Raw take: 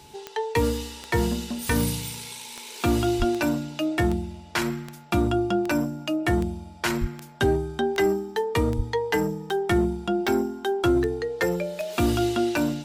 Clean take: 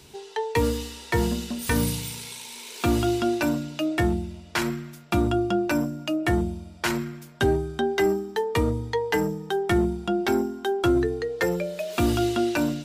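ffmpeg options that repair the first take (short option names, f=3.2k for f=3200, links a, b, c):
-filter_complex "[0:a]adeclick=t=4,bandreject=f=860:w=30,asplit=3[a][b][c];[a]afade=t=out:st=3.18:d=0.02[d];[b]highpass=f=140:w=0.5412,highpass=f=140:w=1.3066,afade=t=in:st=3.18:d=0.02,afade=t=out:st=3.3:d=0.02[e];[c]afade=t=in:st=3.3:d=0.02[f];[d][e][f]amix=inputs=3:normalize=0,asplit=3[g][h][i];[g]afade=t=out:st=7:d=0.02[j];[h]highpass=f=140:w=0.5412,highpass=f=140:w=1.3066,afade=t=in:st=7:d=0.02,afade=t=out:st=7.12:d=0.02[k];[i]afade=t=in:st=7.12:d=0.02[l];[j][k][l]amix=inputs=3:normalize=0,asplit=3[m][n][o];[m]afade=t=out:st=8.76:d=0.02[p];[n]highpass=f=140:w=0.5412,highpass=f=140:w=1.3066,afade=t=in:st=8.76:d=0.02,afade=t=out:st=8.88:d=0.02[q];[o]afade=t=in:st=8.88:d=0.02[r];[p][q][r]amix=inputs=3:normalize=0"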